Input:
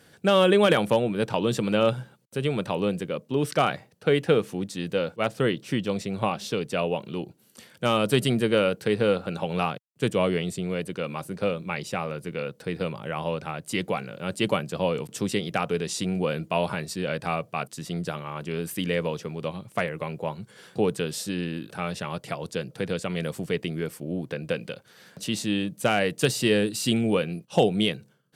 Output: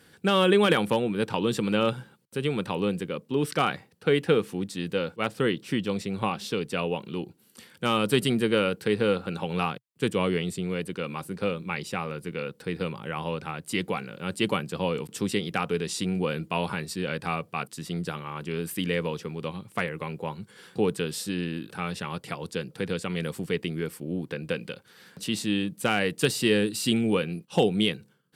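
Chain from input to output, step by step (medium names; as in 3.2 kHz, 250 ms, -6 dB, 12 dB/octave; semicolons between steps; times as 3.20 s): graphic EQ with 31 bands 125 Hz -5 dB, 630 Hz -10 dB, 6.3 kHz -4 dB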